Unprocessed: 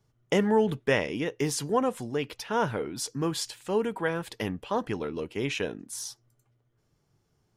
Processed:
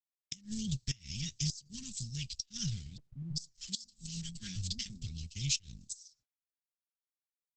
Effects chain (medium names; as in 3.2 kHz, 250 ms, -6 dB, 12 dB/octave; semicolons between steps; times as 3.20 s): companding laws mixed up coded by A; comb 4.9 ms, depth 69%; 2.97–5.06 s: three bands offset in time mids, lows, highs 140/390 ms, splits 160/560 Hz; gate -51 dBFS, range -52 dB; Chebyshev band-stop 100–4700 Hz, order 3; inverted gate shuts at -31 dBFS, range -28 dB; trim +13.5 dB; Opus 10 kbps 48 kHz